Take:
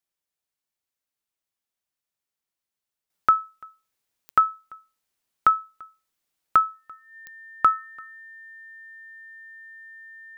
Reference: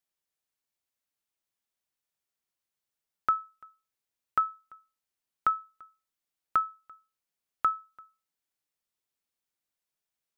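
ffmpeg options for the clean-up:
ffmpeg -i in.wav -af "adeclick=threshold=4,bandreject=frequency=1800:width=30,asetnsamples=nb_out_samples=441:pad=0,asendcmd='3.1 volume volume -8dB',volume=0dB" out.wav

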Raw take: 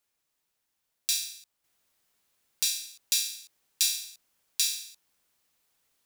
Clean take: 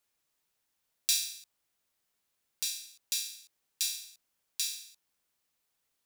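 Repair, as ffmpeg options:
ffmpeg -i in.wav -af "asetnsamples=nb_out_samples=441:pad=0,asendcmd='1.64 volume volume -6.5dB',volume=0dB" out.wav

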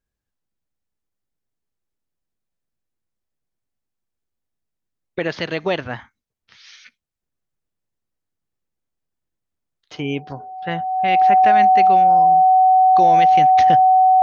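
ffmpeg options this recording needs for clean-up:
ffmpeg -i in.wav -af "bandreject=frequency=750:width=30" out.wav

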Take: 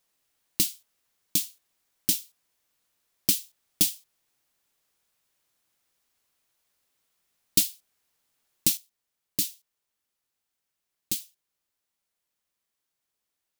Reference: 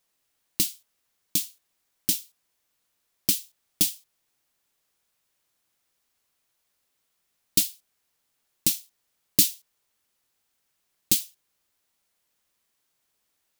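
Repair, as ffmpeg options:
ffmpeg -i in.wav -af "asetnsamples=nb_out_samples=441:pad=0,asendcmd='8.77 volume volume 8dB',volume=0dB" out.wav

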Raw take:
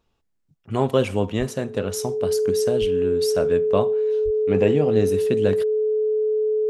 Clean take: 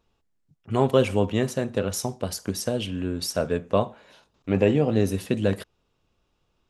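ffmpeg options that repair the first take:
ffmpeg -i in.wav -filter_complex "[0:a]bandreject=frequency=430:width=30,asplit=3[link_01][link_02][link_03];[link_01]afade=type=out:start_time=1.38:duration=0.02[link_04];[link_02]highpass=frequency=140:width=0.5412,highpass=frequency=140:width=1.3066,afade=type=in:start_time=1.38:duration=0.02,afade=type=out:start_time=1.5:duration=0.02[link_05];[link_03]afade=type=in:start_time=1.5:duration=0.02[link_06];[link_04][link_05][link_06]amix=inputs=3:normalize=0,asplit=3[link_07][link_08][link_09];[link_07]afade=type=out:start_time=2.8:duration=0.02[link_10];[link_08]highpass=frequency=140:width=0.5412,highpass=frequency=140:width=1.3066,afade=type=in:start_time=2.8:duration=0.02,afade=type=out:start_time=2.92:duration=0.02[link_11];[link_09]afade=type=in:start_time=2.92:duration=0.02[link_12];[link_10][link_11][link_12]amix=inputs=3:normalize=0,asplit=3[link_13][link_14][link_15];[link_13]afade=type=out:start_time=4.24:duration=0.02[link_16];[link_14]highpass=frequency=140:width=0.5412,highpass=frequency=140:width=1.3066,afade=type=in:start_time=4.24:duration=0.02,afade=type=out:start_time=4.36:duration=0.02[link_17];[link_15]afade=type=in:start_time=4.36:duration=0.02[link_18];[link_16][link_17][link_18]amix=inputs=3:normalize=0" out.wav

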